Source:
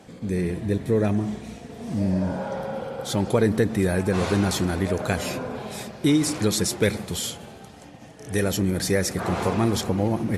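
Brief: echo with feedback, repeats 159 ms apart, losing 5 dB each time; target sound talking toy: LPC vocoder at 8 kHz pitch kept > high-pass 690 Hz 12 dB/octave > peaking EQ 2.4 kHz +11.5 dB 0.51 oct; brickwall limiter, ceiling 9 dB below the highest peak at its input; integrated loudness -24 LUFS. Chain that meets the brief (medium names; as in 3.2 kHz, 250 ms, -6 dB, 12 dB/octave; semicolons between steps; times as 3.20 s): peak limiter -17 dBFS; feedback delay 159 ms, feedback 56%, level -5 dB; LPC vocoder at 8 kHz pitch kept; high-pass 690 Hz 12 dB/octave; peaking EQ 2.4 kHz +11.5 dB 0.51 oct; trim +8.5 dB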